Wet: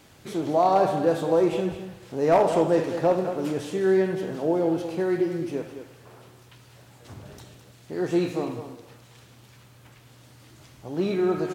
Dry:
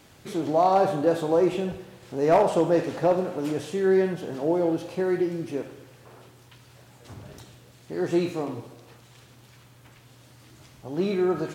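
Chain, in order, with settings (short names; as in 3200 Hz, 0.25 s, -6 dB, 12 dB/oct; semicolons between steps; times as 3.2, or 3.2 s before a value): echo 0.21 s -10.5 dB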